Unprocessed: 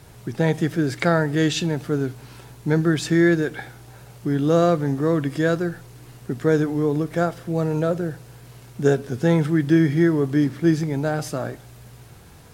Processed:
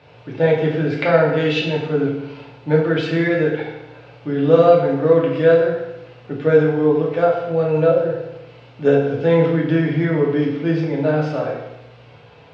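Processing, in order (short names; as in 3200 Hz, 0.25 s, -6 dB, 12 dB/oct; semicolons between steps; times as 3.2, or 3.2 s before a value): speaker cabinet 150–3800 Hz, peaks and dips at 190 Hz -7 dB, 310 Hz -10 dB, 550 Hz +8 dB, 1800 Hz -3 dB, 2600 Hz +6 dB; FDN reverb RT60 0.96 s, low-frequency decay 1×, high-frequency decay 0.85×, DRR -3.5 dB; gain -1 dB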